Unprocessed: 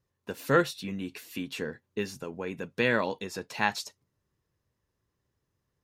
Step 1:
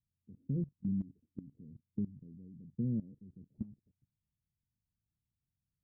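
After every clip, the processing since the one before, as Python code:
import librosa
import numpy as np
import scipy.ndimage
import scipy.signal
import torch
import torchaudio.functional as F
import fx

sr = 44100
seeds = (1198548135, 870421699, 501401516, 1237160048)

y = scipy.signal.sosfilt(scipy.signal.cheby2(4, 70, 1000.0, 'lowpass', fs=sr, output='sos'), x)
y = fx.level_steps(y, sr, step_db=19)
y = F.gain(torch.from_numpy(y), 5.5).numpy()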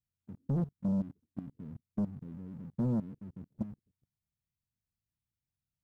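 y = fx.leveller(x, sr, passes=2)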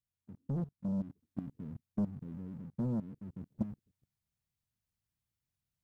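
y = fx.rider(x, sr, range_db=3, speed_s=0.5)
y = F.gain(torch.from_numpy(y), -1.5).numpy()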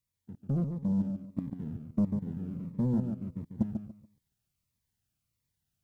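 y = fx.echo_feedback(x, sr, ms=143, feedback_pct=24, wet_db=-6.5)
y = fx.notch_cascade(y, sr, direction='falling', hz=1.5)
y = F.gain(torch.from_numpy(y), 5.5).numpy()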